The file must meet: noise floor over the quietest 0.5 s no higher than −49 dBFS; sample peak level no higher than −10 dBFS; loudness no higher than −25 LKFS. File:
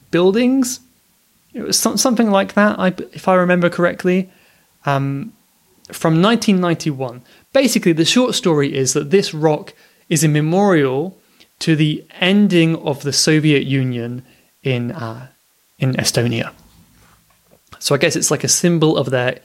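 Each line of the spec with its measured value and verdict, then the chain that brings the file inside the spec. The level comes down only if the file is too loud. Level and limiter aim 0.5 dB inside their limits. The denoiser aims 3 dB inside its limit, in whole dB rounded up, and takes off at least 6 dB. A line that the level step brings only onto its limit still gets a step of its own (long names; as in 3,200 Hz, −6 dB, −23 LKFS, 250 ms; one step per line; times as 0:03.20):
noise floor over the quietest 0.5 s −58 dBFS: in spec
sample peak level −1.5 dBFS: out of spec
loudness −16.0 LKFS: out of spec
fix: level −9.5 dB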